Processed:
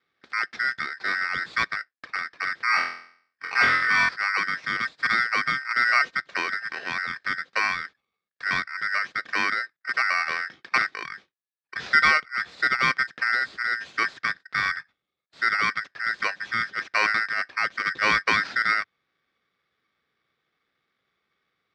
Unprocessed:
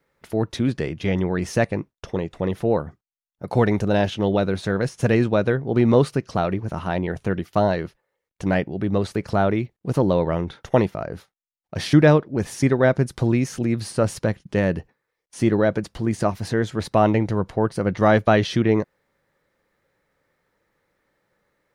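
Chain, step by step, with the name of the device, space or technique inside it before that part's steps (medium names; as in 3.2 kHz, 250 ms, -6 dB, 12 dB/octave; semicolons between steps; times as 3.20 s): ring modulator pedal into a guitar cabinet (polarity switched at an audio rate 1.7 kHz; cabinet simulation 92–4300 Hz, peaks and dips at 97 Hz -8 dB, 900 Hz -6 dB, 2.9 kHz -6 dB); 2.65–4.09 s: flutter echo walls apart 4 m, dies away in 0.56 s; trim -3.5 dB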